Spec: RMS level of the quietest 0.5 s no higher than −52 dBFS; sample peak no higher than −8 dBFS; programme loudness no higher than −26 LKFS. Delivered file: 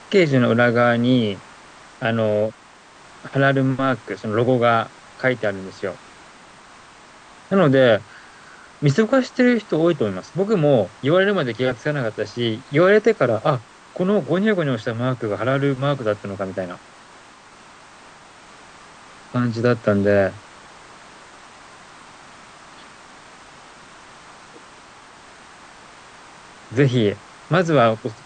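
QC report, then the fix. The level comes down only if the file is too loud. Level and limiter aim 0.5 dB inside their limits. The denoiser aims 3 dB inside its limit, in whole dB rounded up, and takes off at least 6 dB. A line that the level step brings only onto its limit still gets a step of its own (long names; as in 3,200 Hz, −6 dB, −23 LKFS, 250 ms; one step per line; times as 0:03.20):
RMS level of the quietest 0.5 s −47 dBFS: out of spec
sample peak −4.5 dBFS: out of spec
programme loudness −19.5 LKFS: out of spec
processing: level −7 dB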